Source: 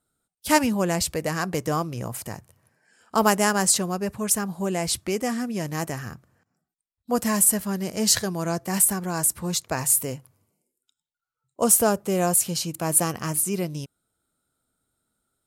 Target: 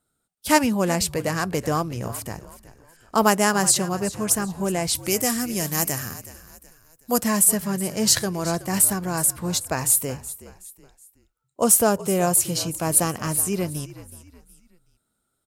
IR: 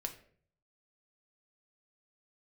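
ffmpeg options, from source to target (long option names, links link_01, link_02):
-filter_complex "[0:a]asettb=1/sr,asplit=3[link_01][link_02][link_03];[link_01]atrim=end=4.954[link_04];[link_02]atrim=start=4.95:end=7.18,asetpts=PTS-STARTPTS,afade=type=in:duration=0.004:curve=qsin,afade=type=out:start_time=2.226:duration=0.004:curve=qsin,aemphasis=mode=production:type=75fm[link_05];[link_03]atrim=start=7.176[link_06];[link_04][link_05]acrossfade=duration=0.004:curve1=hsin:curve2=qsin[link_07];[link_07][link_06]acrossfade=duration=0.004:curve1=qsin:curve2=hsin,asplit=4[link_08][link_09][link_10][link_11];[link_09]adelay=372,afreqshift=-57,volume=-16dB[link_12];[link_10]adelay=744,afreqshift=-114,volume=-24.2dB[link_13];[link_11]adelay=1116,afreqshift=-171,volume=-32.4dB[link_14];[link_08][link_12][link_13][link_14]amix=inputs=4:normalize=0,volume=1.5dB"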